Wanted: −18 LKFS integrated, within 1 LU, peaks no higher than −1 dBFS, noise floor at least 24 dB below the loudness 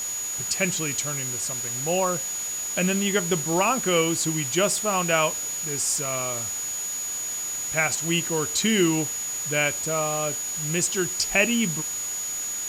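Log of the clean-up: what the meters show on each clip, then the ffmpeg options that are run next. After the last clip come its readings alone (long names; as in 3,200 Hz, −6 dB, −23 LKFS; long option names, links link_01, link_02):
interfering tone 6,800 Hz; level of the tone −28 dBFS; background noise floor −30 dBFS; target noise floor −48 dBFS; integrated loudness −24.0 LKFS; sample peak −7.0 dBFS; target loudness −18.0 LKFS
→ -af "bandreject=frequency=6800:width=30"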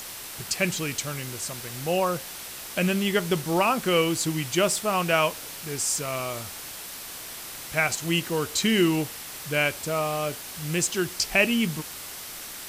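interfering tone none found; background noise floor −39 dBFS; target noise floor −50 dBFS
→ -af "afftdn=noise_reduction=11:noise_floor=-39"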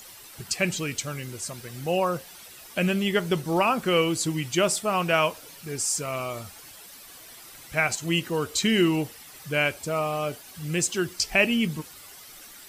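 background noise floor −47 dBFS; target noise floor −50 dBFS
→ -af "afftdn=noise_reduction=6:noise_floor=-47"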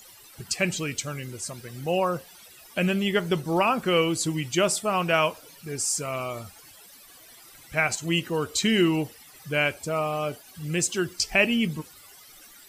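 background noise floor −50 dBFS; integrated loudness −26.0 LKFS; sample peak −7.5 dBFS; target loudness −18.0 LKFS
→ -af "volume=8dB,alimiter=limit=-1dB:level=0:latency=1"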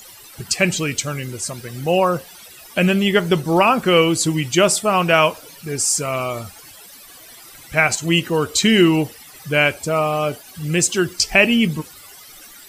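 integrated loudness −18.0 LKFS; sample peak −1.0 dBFS; background noise floor −42 dBFS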